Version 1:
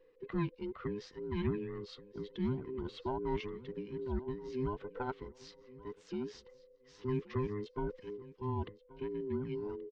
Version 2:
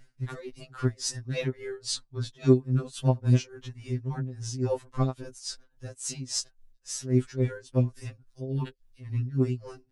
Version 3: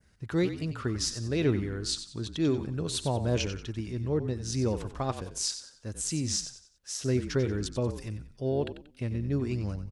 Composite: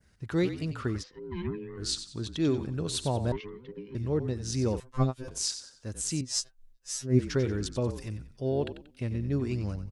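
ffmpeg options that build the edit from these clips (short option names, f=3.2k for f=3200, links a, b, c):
-filter_complex "[0:a]asplit=2[a][b];[1:a]asplit=2[c][d];[2:a]asplit=5[e][f][g][h][i];[e]atrim=end=1.04[j];[a]atrim=start=0.98:end=1.82[k];[f]atrim=start=1.76:end=3.322[l];[b]atrim=start=3.318:end=3.952[m];[g]atrim=start=3.948:end=4.802[n];[c]atrim=start=4.798:end=5.282[o];[h]atrim=start=5.278:end=6.212[p];[d]atrim=start=6.208:end=7.192[q];[i]atrim=start=7.188[r];[j][k]acrossfade=d=0.06:c1=tri:c2=tri[s];[s][l]acrossfade=d=0.06:c1=tri:c2=tri[t];[t][m]acrossfade=d=0.004:c1=hsin:c2=hsin[u];[u][n]acrossfade=d=0.004:c1=hsin:c2=hsin[v];[v][o]acrossfade=d=0.004:c1=hsin:c2=hsin[w];[w][p]acrossfade=d=0.004:c1=hsin:c2=hsin[x];[x][q]acrossfade=d=0.004:c1=hsin:c2=hsin[y];[y][r]acrossfade=d=0.004:c1=hsin:c2=hsin"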